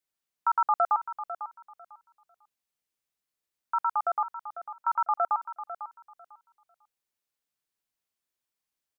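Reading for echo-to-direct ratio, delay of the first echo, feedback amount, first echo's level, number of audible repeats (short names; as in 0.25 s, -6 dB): -12.0 dB, 0.498 s, 20%, -12.0 dB, 2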